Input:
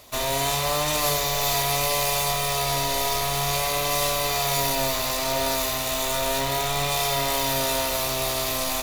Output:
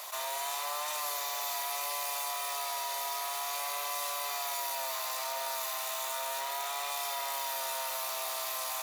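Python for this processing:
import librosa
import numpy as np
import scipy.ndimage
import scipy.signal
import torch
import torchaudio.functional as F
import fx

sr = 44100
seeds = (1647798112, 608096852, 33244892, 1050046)

y = fx.ladder_highpass(x, sr, hz=690.0, resonance_pct=25)
y = fx.peak_eq(y, sr, hz=3200.0, db=-4.5, octaves=2.2)
y = fx.env_flatten(y, sr, amount_pct=70)
y = y * librosa.db_to_amplitude(-4.5)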